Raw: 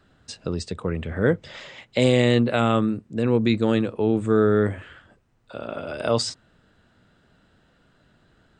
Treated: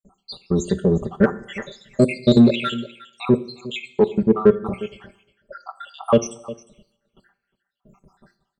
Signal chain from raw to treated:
time-frequency cells dropped at random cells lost 82%
0:04.22–0:04.66: Bessel low-pass filter 1,400 Hz, order 2
hum removal 352.4 Hz, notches 27
noise gate with hold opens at −57 dBFS
comb filter 5.1 ms, depth 93%
single-tap delay 356 ms −19 dB
coupled-rooms reverb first 0.66 s, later 1.7 s, from −23 dB, DRR 14.5 dB
in parallel at −4 dB: soft clipping −21.5 dBFS, distortion −8 dB
on the sum: level +4 dB

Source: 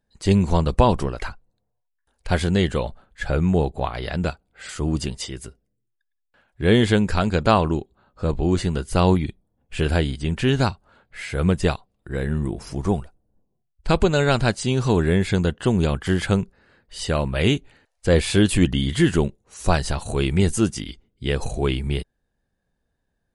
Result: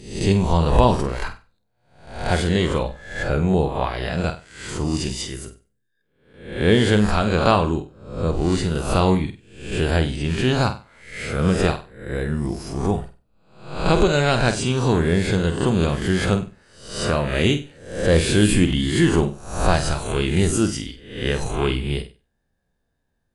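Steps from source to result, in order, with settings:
peak hold with a rise ahead of every peak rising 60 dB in 0.60 s
flutter between parallel walls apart 8.2 metres, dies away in 0.31 s
level −1 dB

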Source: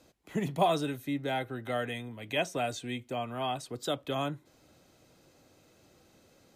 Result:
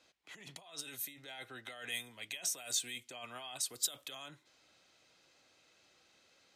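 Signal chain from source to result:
compressor whose output falls as the input rises −37 dBFS, ratio −1
first-order pre-emphasis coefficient 0.97
low-pass that shuts in the quiet parts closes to 2,600 Hz, open at −43.5 dBFS
level +7 dB

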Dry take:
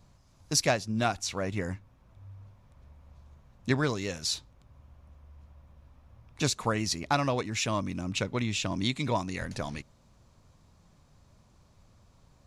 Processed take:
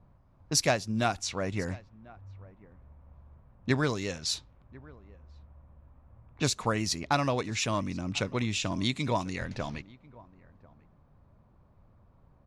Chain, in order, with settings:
single-tap delay 1,043 ms −23 dB
low-pass that shuts in the quiet parts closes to 1,300 Hz, open at −26 dBFS

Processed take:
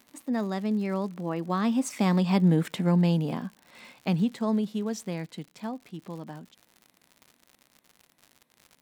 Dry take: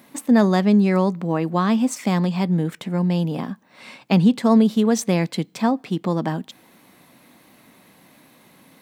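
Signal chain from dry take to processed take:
source passing by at 0:02.64, 11 m/s, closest 5.6 metres
surface crackle 100 per second −40 dBFS

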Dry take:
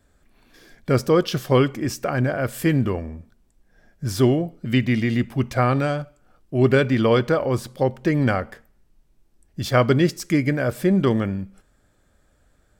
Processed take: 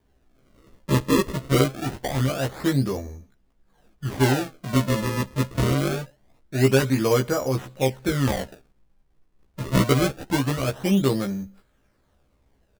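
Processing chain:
sample-and-hold swept by an LFO 33×, swing 160% 0.24 Hz
double-tracking delay 15 ms −2.5 dB
level −5 dB

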